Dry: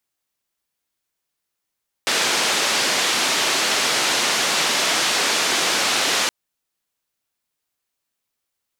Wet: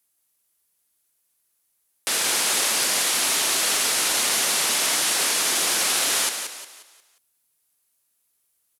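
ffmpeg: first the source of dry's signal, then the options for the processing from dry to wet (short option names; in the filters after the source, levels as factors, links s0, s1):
-f lavfi -i "anoisesrc=c=white:d=4.22:r=44100:seed=1,highpass=f=250,lowpass=f=5500,volume=-9.2dB"
-filter_complex "[0:a]equalizer=f=11000:t=o:w=0.97:g=15,alimiter=limit=0.188:level=0:latency=1,asplit=6[s0][s1][s2][s3][s4][s5];[s1]adelay=178,afreqshift=35,volume=0.422[s6];[s2]adelay=356,afreqshift=70,volume=0.168[s7];[s3]adelay=534,afreqshift=105,volume=0.0676[s8];[s4]adelay=712,afreqshift=140,volume=0.0269[s9];[s5]adelay=890,afreqshift=175,volume=0.0108[s10];[s0][s6][s7][s8][s9][s10]amix=inputs=6:normalize=0"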